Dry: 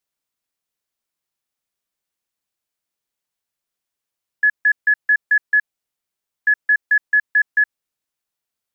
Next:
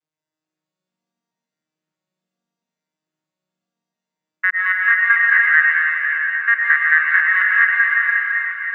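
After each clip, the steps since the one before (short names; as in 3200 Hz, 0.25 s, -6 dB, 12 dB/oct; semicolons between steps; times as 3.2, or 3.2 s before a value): arpeggiated vocoder minor triad, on D#3, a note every 0.436 s; reverb RT60 5.3 s, pre-delay 85 ms, DRR -5.5 dB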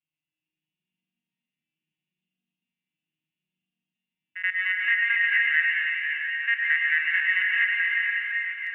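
EQ curve 260 Hz 0 dB, 390 Hz -9 dB, 570 Hz -26 dB, 800 Hz -10 dB, 1200 Hz -23 dB, 2800 Hz +10 dB, 4900 Hz -21 dB; reverse echo 79 ms -10.5 dB; gain -2 dB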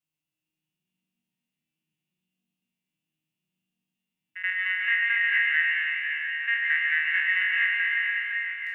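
spectral trails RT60 0.63 s; bell 1900 Hz -5 dB 2 oct; gain +2.5 dB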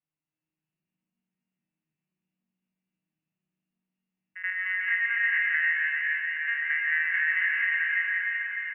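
LPF 2200 Hz 24 dB/oct; feedback echo 0.301 s, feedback 55%, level -6 dB; gain -1.5 dB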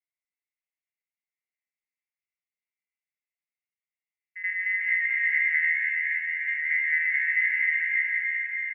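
band-pass 2100 Hz, Q 14; comb 6.5 ms, depth 31%; gain +7.5 dB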